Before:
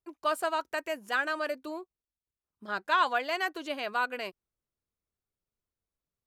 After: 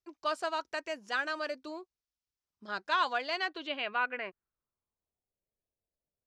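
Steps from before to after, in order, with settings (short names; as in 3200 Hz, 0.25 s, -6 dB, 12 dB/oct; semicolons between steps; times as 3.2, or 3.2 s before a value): low-pass sweep 5600 Hz -> 630 Hz, 3.19–5.31; gain -4 dB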